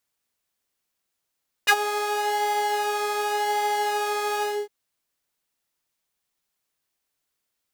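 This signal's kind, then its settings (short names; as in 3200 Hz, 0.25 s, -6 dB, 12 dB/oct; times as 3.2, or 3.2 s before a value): synth patch with pulse-width modulation G#4, detune 27 cents, sub -24.5 dB, noise -18 dB, filter highpass, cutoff 360 Hz, Q 3.1, filter envelope 3 oct, filter decay 0.06 s, filter sustain 30%, attack 17 ms, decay 0.06 s, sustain -14 dB, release 0.26 s, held 2.75 s, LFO 0.89 Hz, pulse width 37%, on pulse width 6%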